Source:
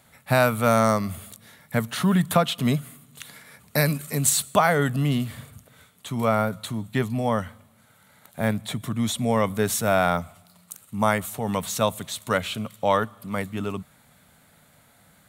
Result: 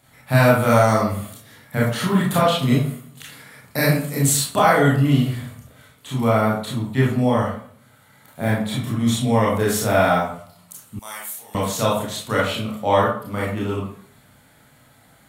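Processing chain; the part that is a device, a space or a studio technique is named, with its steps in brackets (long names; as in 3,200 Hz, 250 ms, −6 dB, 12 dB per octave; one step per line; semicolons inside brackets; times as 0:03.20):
bathroom (convolution reverb RT60 0.55 s, pre-delay 25 ms, DRR −6 dB)
0:10.99–0:11.55: first difference
level −3 dB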